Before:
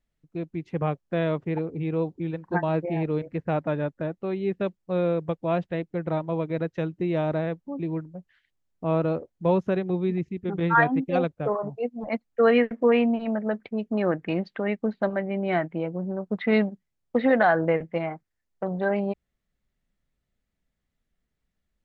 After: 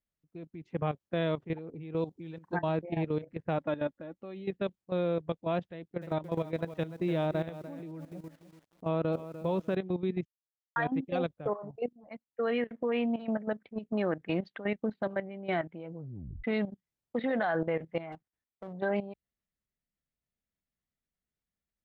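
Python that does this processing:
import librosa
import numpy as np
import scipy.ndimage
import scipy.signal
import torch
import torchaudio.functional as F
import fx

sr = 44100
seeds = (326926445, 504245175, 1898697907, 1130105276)

y = fx.high_shelf(x, sr, hz=3800.0, db=9.0, at=(1.97, 2.58))
y = fx.comb(y, sr, ms=3.6, depth=0.45, at=(3.58, 4.5))
y = fx.echo_crushed(y, sr, ms=300, feedback_pct=35, bits=8, wet_db=-10.5, at=(5.63, 9.75))
y = fx.running_max(y, sr, window=9, at=(18.12, 18.73))
y = fx.edit(y, sr, fx.silence(start_s=10.25, length_s=0.51),
    fx.fade_in_from(start_s=11.93, length_s=0.93, floor_db=-17.0),
    fx.tape_stop(start_s=15.93, length_s=0.51), tone=tone)
y = fx.highpass(y, sr, hz=54.0, slope=6)
y = fx.dynamic_eq(y, sr, hz=3400.0, q=4.0, threshold_db=-57.0, ratio=4.0, max_db=7)
y = fx.level_steps(y, sr, step_db=13)
y = F.gain(torch.from_numpy(y), -3.0).numpy()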